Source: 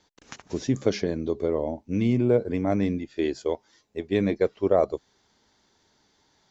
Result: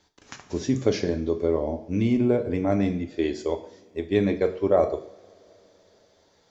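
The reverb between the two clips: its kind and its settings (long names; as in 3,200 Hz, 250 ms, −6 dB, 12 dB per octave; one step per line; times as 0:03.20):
coupled-rooms reverb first 0.51 s, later 4.5 s, from −28 dB, DRR 5.5 dB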